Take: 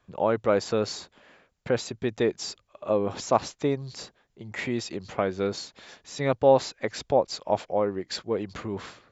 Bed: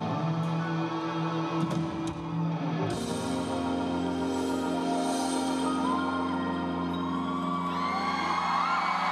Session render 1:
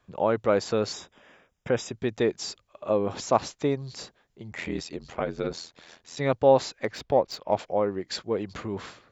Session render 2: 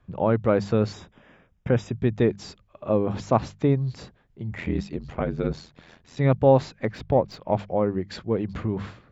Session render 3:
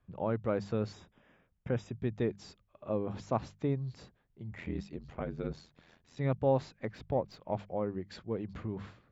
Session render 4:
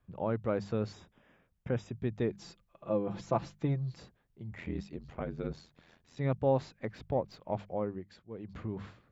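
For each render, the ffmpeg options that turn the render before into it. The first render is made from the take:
ffmpeg -i in.wav -filter_complex "[0:a]asettb=1/sr,asplit=3[link_01][link_02][link_03];[link_01]atrim=end=0.934[link_04];[link_02]atrim=start=0.93:end=1.92,asetpts=PTS-STARTPTS,afade=type=in:duration=0.004:curve=qsin,afade=type=out:start_time=0.986:duration=0.004:curve=qsin,asuperstop=centerf=4300:order=20:qfactor=4.8[link_05];[link_03]atrim=start=1.916[link_06];[link_04][link_05]acrossfade=duration=0.004:curve1=hsin:curve2=qsin[link_07];[link_07][link_06]acrossfade=duration=0.004:curve1=qsin:curve2=hsin,asettb=1/sr,asplit=3[link_08][link_09][link_10];[link_08]atrim=end=4.514[link_11];[link_09]atrim=start=4.51:end=6.17,asetpts=PTS-STARTPTS,afade=type=in:duration=0.004:curve=qsin,afade=type=out:start_time=1.656:duration=0.004:curve=qsin,aeval=exprs='val(0)*sin(2*PI*42*n/s)':channel_layout=same[link_12];[link_10]atrim=start=6.166[link_13];[link_11][link_12]acrossfade=duration=0.004:curve1=hsin:curve2=qsin[link_14];[link_14][link_13]acrossfade=duration=0.004:curve1=qsin:curve2=hsin,asettb=1/sr,asplit=3[link_15][link_16][link_17];[link_15]atrim=end=6.844[link_18];[link_16]atrim=start=6.84:end=7.59,asetpts=PTS-STARTPTS,afade=type=in:duration=0.004:curve=qsin,afade=type=out:start_time=0.746:duration=0.004:curve=qsin,adynamicsmooth=sensitivity=4:basefreq=4100[link_19];[link_17]atrim=start=7.586[link_20];[link_18][link_19]acrossfade=duration=0.004:curve1=hsin:curve2=qsin[link_21];[link_21][link_20]acrossfade=duration=0.004:curve1=qsin:curve2=hsin" out.wav
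ffmpeg -i in.wav -af "bass=frequency=250:gain=13,treble=frequency=4000:gain=-11,bandreject=frequency=50:width_type=h:width=6,bandreject=frequency=100:width_type=h:width=6,bandreject=frequency=150:width_type=h:width=6,bandreject=frequency=200:width_type=h:width=6" out.wav
ffmpeg -i in.wav -af "volume=-11dB" out.wav
ffmpeg -i in.wav -filter_complex "[0:a]asettb=1/sr,asplit=3[link_01][link_02][link_03];[link_01]atrim=end=2.324[link_04];[link_02]atrim=start=2.32:end=4,asetpts=PTS-STARTPTS,afade=type=in:duration=0.004:curve=qsin,afade=type=out:start_time=1.676:duration=0.004:curve=qsin,aecho=1:1:5.9:0.62,atrim=end_sample=74088[link_05];[link_03]atrim=start=3.996[link_06];[link_04][link_05]acrossfade=duration=0.004:curve1=hsin:curve2=qsin[link_07];[link_07][link_06]acrossfade=duration=0.004:curve1=qsin:curve2=hsin,asplit=3[link_08][link_09][link_10];[link_08]atrim=end=8.19,asetpts=PTS-STARTPTS,afade=type=out:start_time=7.83:duration=0.36:silence=0.251189[link_11];[link_09]atrim=start=8.19:end=8.28,asetpts=PTS-STARTPTS,volume=-12dB[link_12];[link_10]atrim=start=8.28,asetpts=PTS-STARTPTS,afade=type=in:duration=0.36:silence=0.251189[link_13];[link_11][link_12][link_13]concat=n=3:v=0:a=1" out.wav

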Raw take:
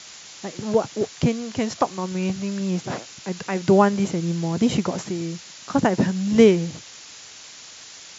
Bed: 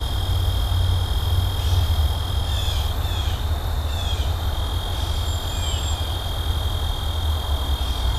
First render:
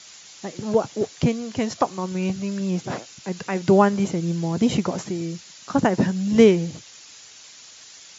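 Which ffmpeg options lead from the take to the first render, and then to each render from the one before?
ffmpeg -i in.wav -af "afftdn=noise_reduction=6:noise_floor=-43" out.wav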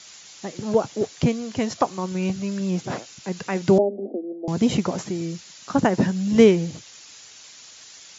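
ffmpeg -i in.wav -filter_complex "[0:a]asettb=1/sr,asplit=3[link_01][link_02][link_03];[link_01]atrim=end=3.784[link_04];[link_02]atrim=start=3.78:end=4.48,asetpts=PTS-STARTPTS,afade=type=in:duration=0.004:curve=qsin,afade=type=out:start_time=0.696:duration=0.004:curve=qsin,asuperpass=centerf=410:order=20:qfactor=0.77[link_05];[link_03]atrim=start=4.476[link_06];[link_04][link_05]acrossfade=duration=0.004:curve1=hsin:curve2=qsin[link_07];[link_07][link_06]acrossfade=duration=0.004:curve1=qsin:curve2=hsin" out.wav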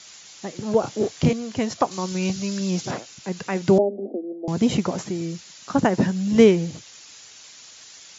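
ffmpeg -i in.wav -filter_complex "[0:a]asettb=1/sr,asplit=3[link_01][link_02][link_03];[link_01]atrim=end=0.804[link_04];[link_02]atrim=start=0.8:end=1.33,asetpts=PTS-STARTPTS,afade=type=in:duration=0.004:curve=qsin,afade=type=out:start_time=0.526:duration=0.004:curve=qsin,asplit=2[link_05][link_06];[link_06]adelay=32,volume=-3dB[link_07];[link_05][link_07]amix=inputs=2:normalize=0,atrim=end_sample=23373[link_08];[link_03]atrim=start=1.326[link_09];[link_04][link_08]acrossfade=duration=0.004:curve1=hsin:curve2=qsin[link_10];[link_10][link_09]acrossfade=duration=0.004:curve1=qsin:curve2=hsin,asettb=1/sr,asplit=3[link_11][link_12][link_13];[link_11]atrim=end=1.914[link_14];[link_12]atrim=start=1.91:end=2.91,asetpts=PTS-STARTPTS,afade=type=in:duration=0.004:curve=qsin,afade=type=out:start_time=0.996:duration=0.004:curve=qsin,equalizer=frequency=5200:width_type=o:width=1.5:gain=9[link_15];[link_13]atrim=start=2.906[link_16];[link_14][link_15]acrossfade=duration=0.004:curve1=hsin:curve2=qsin[link_17];[link_17][link_16]acrossfade=duration=0.004:curve1=qsin:curve2=hsin" out.wav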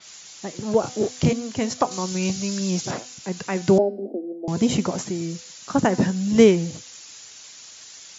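ffmpeg -i in.wav -af "bandreject=frequency=250.7:width_type=h:width=4,bandreject=frequency=501.4:width_type=h:width=4,bandreject=frequency=752.1:width_type=h:width=4,bandreject=frequency=1002.8:width_type=h:width=4,bandreject=frequency=1253.5:width_type=h:width=4,bandreject=frequency=1504.2:width_type=h:width=4,bandreject=frequency=1754.9:width_type=h:width=4,bandreject=frequency=2005.6:width_type=h:width=4,bandreject=frequency=2256.3:width_type=h:width=4,bandreject=frequency=2507:width_type=h:width=4,bandreject=frequency=2757.7:width_type=h:width=4,bandreject=frequency=3008.4:width_type=h:width=4,bandreject=frequency=3259.1:width_type=h:width=4,bandreject=frequency=3509.8:width_type=h:width=4,bandreject=frequency=3760.5:width_type=h:width=4,bandreject=frequency=4011.2:width_type=h:width=4,bandreject=frequency=4261.9:width_type=h:width=4,bandreject=frequency=4512.6:width_type=h:width=4,bandreject=frequency=4763.3:width_type=h:width=4,bandreject=frequency=5014:width_type=h:width=4,bandreject=frequency=5264.7:width_type=h:width=4,adynamicequalizer=threshold=0.00447:dfrequency=5500:dqfactor=0.7:tfrequency=5500:tqfactor=0.7:attack=5:release=100:ratio=0.375:range=3.5:mode=boostabove:tftype=highshelf" out.wav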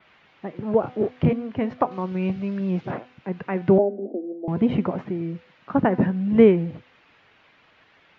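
ffmpeg -i in.wav -af "lowpass=frequency=2700:width=0.5412,lowpass=frequency=2700:width=1.3066,aemphasis=mode=reproduction:type=75kf" out.wav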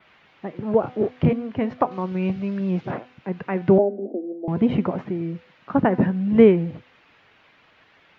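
ffmpeg -i in.wav -af "volume=1dB" out.wav

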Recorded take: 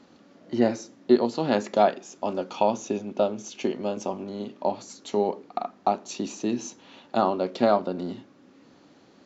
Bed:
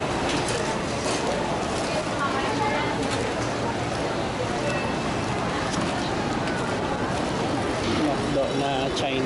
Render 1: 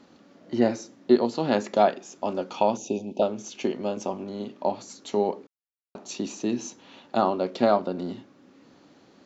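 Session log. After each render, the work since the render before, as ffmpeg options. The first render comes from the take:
ffmpeg -i in.wav -filter_complex "[0:a]asettb=1/sr,asplit=3[link_01][link_02][link_03];[link_01]atrim=end=2.774[link_04];[link_02]atrim=start=2.77:end=3.22,asetpts=PTS-STARTPTS,afade=type=in:duration=0.004:curve=qsin,afade=type=out:start_time=0.446:duration=0.004:curve=qsin,asuperstop=centerf=1500:order=12:qfactor=1[link_05];[link_03]atrim=start=3.216[link_06];[link_04][link_05]acrossfade=duration=0.004:curve1=hsin:curve2=qsin[link_07];[link_07][link_06]acrossfade=duration=0.004:curve1=qsin:curve2=hsin,asplit=3[link_08][link_09][link_10];[link_08]atrim=end=5.47,asetpts=PTS-STARTPTS,afade=type=out:start_time=5.466:duration=0.004:curve=hsin[link_11];[link_09]atrim=start=5.47:end=5.95,asetpts=PTS-STARTPTS,volume=0[link_12];[link_10]atrim=start=5.95,asetpts=PTS-STARTPTS,afade=type=in:duration=0.004:curve=hsin[link_13];[link_11][link_12][link_13]concat=n=3:v=0:a=1" out.wav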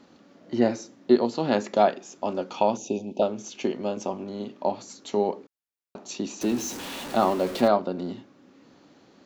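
ffmpeg -i in.wav -filter_complex "[0:a]asettb=1/sr,asplit=3[link_01][link_02][link_03];[link_01]atrim=end=6.414[link_04];[link_02]atrim=start=6.41:end=7.68,asetpts=PTS-STARTPTS,afade=type=in:duration=0.004:curve=qsin,afade=type=out:start_time=1.266:duration=0.004:curve=qsin,aeval=exprs='val(0)+0.5*0.0266*sgn(val(0))':channel_layout=same[link_05];[link_03]atrim=start=7.676[link_06];[link_04][link_05]acrossfade=duration=0.004:curve1=hsin:curve2=qsin[link_07];[link_07][link_06]acrossfade=duration=0.004:curve1=qsin:curve2=hsin" out.wav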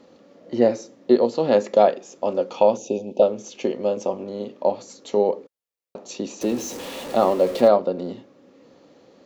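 ffmpeg -i in.wav -af "equalizer=frequency=510:width_type=o:width=0.46:gain=11.5,bandreject=frequency=1500:width=13" out.wav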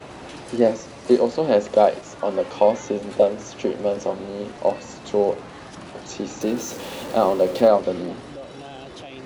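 ffmpeg -i in.wav -i bed.wav -filter_complex "[1:a]volume=-13.5dB[link_01];[0:a][link_01]amix=inputs=2:normalize=0" out.wav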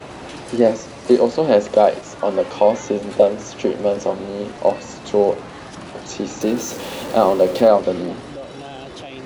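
ffmpeg -i in.wav -af "volume=4dB,alimiter=limit=-2dB:level=0:latency=1" out.wav

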